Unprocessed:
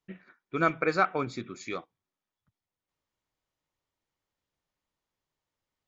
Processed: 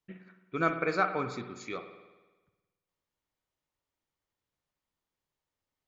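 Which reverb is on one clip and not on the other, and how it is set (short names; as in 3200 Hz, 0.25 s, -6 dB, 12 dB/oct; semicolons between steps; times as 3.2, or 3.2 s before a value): spring tank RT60 1.2 s, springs 54 ms, chirp 50 ms, DRR 8 dB; gain -3 dB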